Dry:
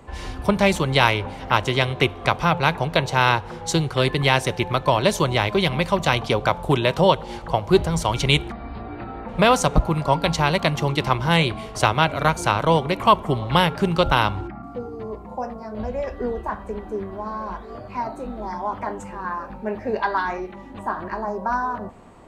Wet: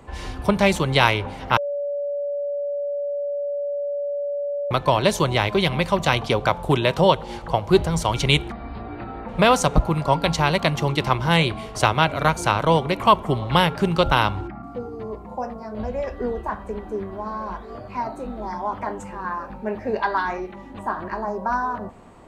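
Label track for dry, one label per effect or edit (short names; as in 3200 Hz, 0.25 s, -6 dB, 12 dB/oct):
1.570000	4.710000	bleep 573 Hz -23 dBFS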